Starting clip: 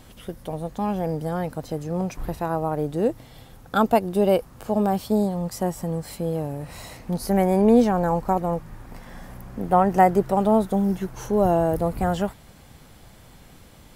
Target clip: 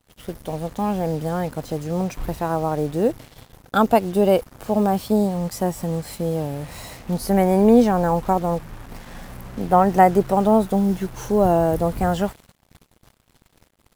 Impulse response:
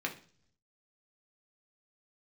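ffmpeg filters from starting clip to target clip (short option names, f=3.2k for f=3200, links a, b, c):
-af "acrusher=bits=6:mix=0:aa=0.5,agate=range=-33dB:threshold=-40dB:ratio=3:detection=peak,volume=2.5dB"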